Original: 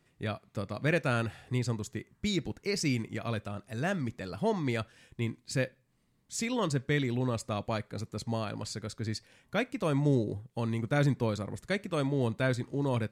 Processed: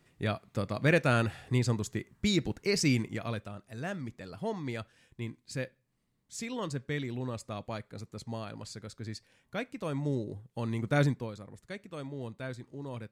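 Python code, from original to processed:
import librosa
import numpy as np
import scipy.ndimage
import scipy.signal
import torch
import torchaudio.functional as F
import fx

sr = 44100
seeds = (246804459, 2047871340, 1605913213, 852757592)

y = fx.gain(x, sr, db=fx.line((2.97, 3.0), (3.59, -5.5), (10.28, -5.5), (11.01, 1.5), (11.31, -10.5)))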